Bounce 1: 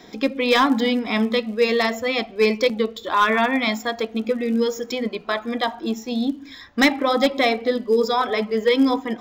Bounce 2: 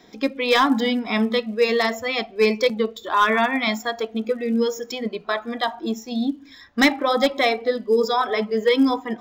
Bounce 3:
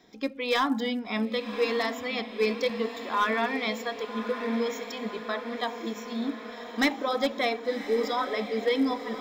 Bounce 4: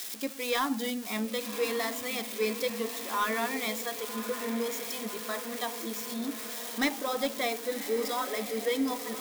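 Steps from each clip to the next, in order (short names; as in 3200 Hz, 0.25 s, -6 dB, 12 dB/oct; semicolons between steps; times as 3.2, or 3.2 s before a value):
spectral noise reduction 6 dB
diffused feedback echo 1.112 s, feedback 61%, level -10 dB; gain -8 dB
switching spikes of -24 dBFS; gain -4 dB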